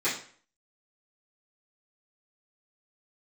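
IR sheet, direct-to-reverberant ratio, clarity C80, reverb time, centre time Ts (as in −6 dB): −14.5 dB, 11.5 dB, 0.50 s, 31 ms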